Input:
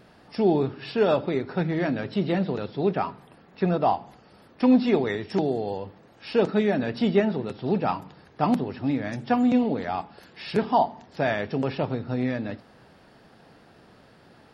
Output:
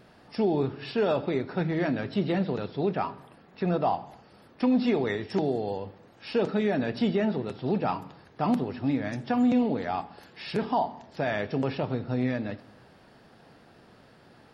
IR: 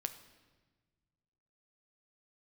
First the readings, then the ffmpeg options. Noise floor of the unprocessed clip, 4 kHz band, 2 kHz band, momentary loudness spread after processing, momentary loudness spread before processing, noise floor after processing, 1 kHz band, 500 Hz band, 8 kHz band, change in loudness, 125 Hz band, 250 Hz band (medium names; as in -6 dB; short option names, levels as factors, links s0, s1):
-55 dBFS, -2.0 dB, -2.5 dB, 10 LU, 10 LU, -56 dBFS, -3.5 dB, -3.5 dB, no reading, -3.0 dB, -2.0 dB, -2.5 dB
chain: -filter_complex "[0:a]alimiter=limit=0.178:level=0:latency=1:release=42,asplit=2[s0][s1];[1:a]atrim=start_sample=2205,afade=t=out:st=0.33:d=0.01,atrim=end_sample=14994[s2];[s1][s2]afir=irnorm=-1:irlink=0,volume=0.891[s3];[s0][s3]amix=inputs=2:normalize=0,volume=0.473"